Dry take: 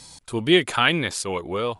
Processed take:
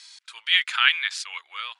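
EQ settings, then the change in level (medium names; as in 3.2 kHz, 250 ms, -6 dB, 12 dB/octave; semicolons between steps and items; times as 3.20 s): high-pass 1.5 kHz 24 dB/octave; low-pass 4.8 kHz 12 dB/octave; +3.0 dB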